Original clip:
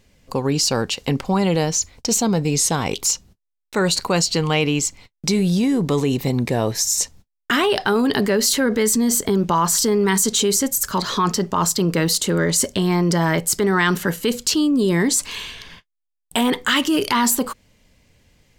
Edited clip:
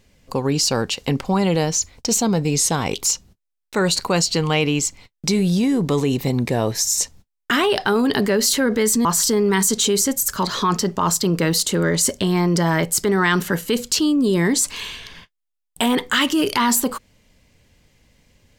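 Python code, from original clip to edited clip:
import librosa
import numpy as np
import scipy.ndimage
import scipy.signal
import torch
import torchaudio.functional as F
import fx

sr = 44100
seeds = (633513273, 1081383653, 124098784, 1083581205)

y = fx.edit(x, sr, fx.cut(start_s=9.05, length_s=0.55), tone=tone)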